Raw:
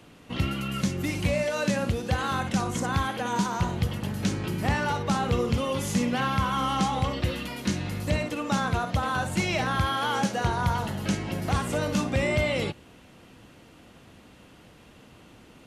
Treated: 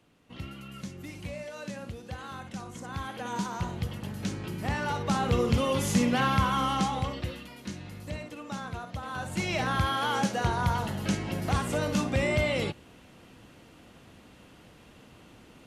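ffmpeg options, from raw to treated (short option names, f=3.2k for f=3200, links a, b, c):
-af "volume=10.5dB,afade=t=in:st=2.82:d=0.47:silence=0.446684,afade=t=in:st=4.63:d=0.97:silence=0.446684,afade=t=out:st=6.35:d=1.11:silence=0.251189,afade=t=in:st=9.03:d=0.66:silence=0.334965"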